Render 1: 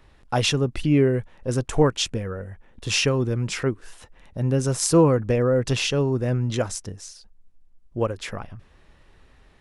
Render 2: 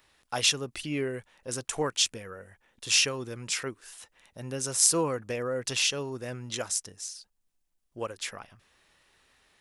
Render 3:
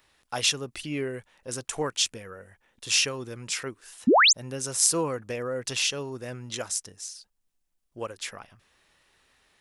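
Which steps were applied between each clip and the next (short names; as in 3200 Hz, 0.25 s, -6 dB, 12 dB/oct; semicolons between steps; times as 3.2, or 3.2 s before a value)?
tilt +3.5 dB/oct; gain -7 dB
painted sound rise, 4.07–4.33, 200–7900 Hz -17 dBFS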